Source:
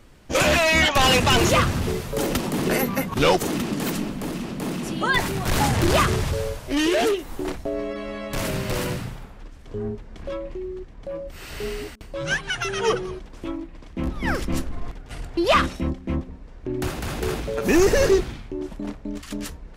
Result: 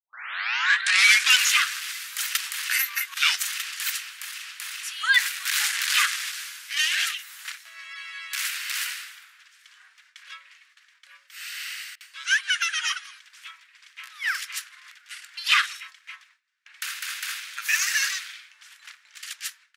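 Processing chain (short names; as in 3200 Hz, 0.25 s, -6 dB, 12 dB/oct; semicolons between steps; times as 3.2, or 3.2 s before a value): tape start at the beginning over 1.35 s; steep high-pass 1500 Hz 36 dB/oct; gate with hold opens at -50 dBFS; speakerphone echo 0.16 s, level -27 dB; gain +4.5 dB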